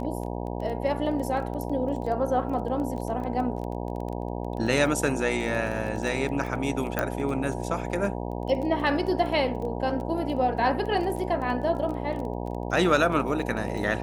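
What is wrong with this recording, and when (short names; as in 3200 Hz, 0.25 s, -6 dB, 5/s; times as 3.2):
buzz 60 Hz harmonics 16 -32 dBFS
crackle 15/s -32 dBFS
6.99 pop -11 dBFS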